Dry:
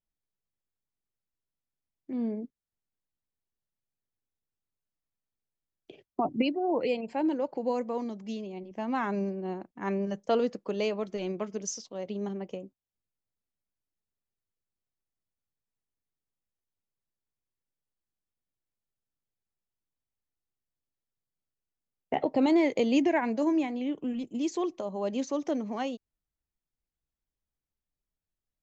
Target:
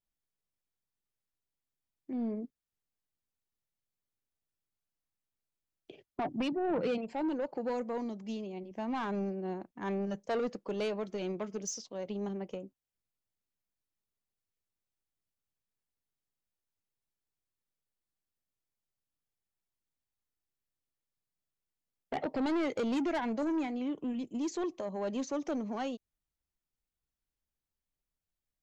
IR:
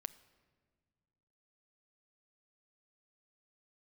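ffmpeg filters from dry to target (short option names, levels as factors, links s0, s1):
-filter_complex "[0:a]asoftclip=type=tanh:threshold=0.0473,asettb=1/sr,asplit=3[s0][s1][s2];[s0]atrim=end=6.524[s3];[s1]atrim=start=6.52:end=6.98,asetpts=PTS-STARTPTS,afade=t=in:d=0.004:c=qsin,afade=t=out:st=0.456:d=0.004:c=qsin,equalizer=f=170:t=o:w=0.77:g=14[s4];[s2]atrim=start=6.976[s5];[s3][s4]acrossfade=d=0.004:c1=hsin:c2=qsin[s6];[s6][s5]acrossfade=d=0.004:c1=qsin:c2=hsin,volume=0.841"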